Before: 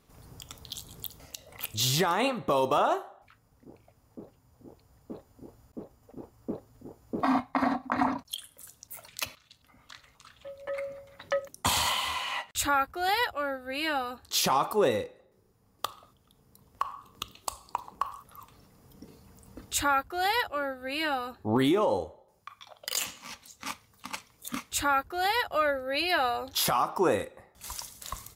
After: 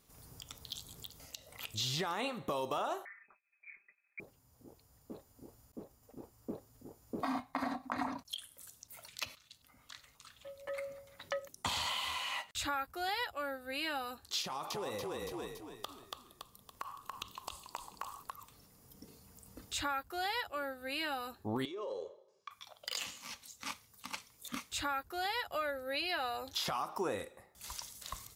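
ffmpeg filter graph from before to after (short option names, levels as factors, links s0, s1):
-filter_complex "[0:a]asettb=1/sr,asplit=3[s0][s1][s2];[s0]atrim=end=3.054[s3];[s1]atrim=start=3.05:end=4.2,asetpts=PTS-STARTPTS,afade=t=in:d=0.004:c=qsin,afade=t=out:st=1.146:d=0.004:c=qsin,aecho=1:1:5:0.7,atrim=end_sample=50715,agate=range=0.0224:threshold=0.00141:ratio=3:release=100:detection=peak,lowpass=f=2200:t=q:w=0.5098,lowpass=f=2200:t=q:w=0.6013,lowpass=f=2200:t=q:w=0.9,lowpass=f=2200:t=q:w=2.563,afreqshift=-2600[s4];[s2]atrim=start=4.196[s5];[s3][s4]acrossfade=d=0.004:c1=hsin:c2=qsin[s6];[s6][s5]acrossfade=d=0.004:c1=qsin:c2=hsin,asettb=1/sr,asplit=3[s7][s8][s9];[s7]atrim=end=14.424[s10];[s8]atrim=start=14.42:end=18.31,asetpts=PTS-STARTPTS,afade=t=in:d=0.004:c=qsin,afade=t=out:st=3.886:d=0.004:c=qsin,asplit=6[s11][s12][s13][s14][s15][s16];[s12]adelay=282,afreqshift=-32,volume=0.562[s17];[s13]adelay=564,afreqshift=-64,volume=0.232[s18];[s14]adelay=846,afreqshift=-96,volume=0.0944[s19];[s15]adelay=1128,afreqshift=-128,volume=0.0389[s20];[s16]adelay=1410,afreqshift=-160,volume=0.0158[s21];[s11][s17][s18][s19][s20][s21]amix=inputs=6:normalize=0,atrim=end_sample=171549,acompressor=threshold=0.0316:ratio=5:attack=3.2:release=140:knee=1:detection=peak[s22];[s9]atrim=start=18.306[s23];[s10][s22]acrossfade=d=0.004:c1=hsin:c2=qsin[s24];[s24][s23]acrossfade=d=0.004:c1=qsin:c2=hsin,asettb=1/sr,asplit=3[s25][s26][s27];[s25]atrim=end=21.654[s28];[s26]atrim=start=21.65:end=22.51,asetpts=PTS-STARTPTS,afade=t=in:d=0.004:c=qsin,afade=t=out:st=0.856:d=0.004:c=qsin,highpass=290,equalizer=f=400:t=q:w=4:g=9,equalizer=f=710:t=q:w=4:g=-7,equalizer=f=1900:t=q:w=4:g=-4,lowpass=f=5900:w=0.5412,lowpass=f=5900:w=1.3066,acompressor=threshold=0.0282:ratio=16:attack=3.2:release=140:knee=1:detection=peak,aecho=1:1:1.8:0.51,atrim=end_sample=37926[s29];[s27]atrim=start=22.506[s30];[s28][s29]acrossfade=d=0.004:c1=hsin:c2=qsin[s31];[s31][s30]acrossfade=d=0.004:c1=qsin:c2=hsin,acrossover=split=5200[s32][s33];[s33]acompressor=threshold=0.00282:ratio=4:attack=1:release=60[s34];[s32][s34]amix=inputs=2:normalize=0,highshelf=f=4100:g=11,acompressor=threshold=0.0398:ratio=2.5,volume=0.473"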